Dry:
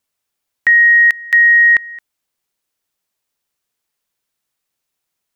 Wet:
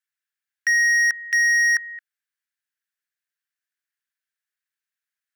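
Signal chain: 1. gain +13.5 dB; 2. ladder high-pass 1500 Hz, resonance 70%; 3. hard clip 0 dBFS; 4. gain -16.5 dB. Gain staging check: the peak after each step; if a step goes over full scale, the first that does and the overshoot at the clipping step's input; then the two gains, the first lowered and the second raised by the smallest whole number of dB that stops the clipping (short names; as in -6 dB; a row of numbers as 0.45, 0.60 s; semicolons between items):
+8.0, +7.5, 0.0, -16.5 dBFS; step 1, 7.5 dB; step 1 +5.5 dB, step 4 -8.5 dB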